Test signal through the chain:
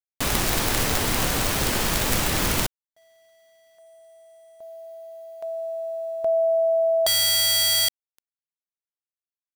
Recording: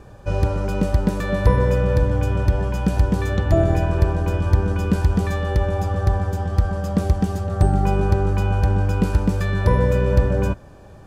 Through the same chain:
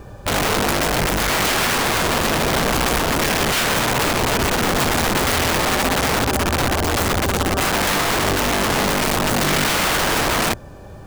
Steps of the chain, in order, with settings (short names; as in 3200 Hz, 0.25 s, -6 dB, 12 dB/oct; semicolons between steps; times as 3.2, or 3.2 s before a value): wrapped overs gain 19.5 dB; bit-crush 11-bit; gain +5.5 dB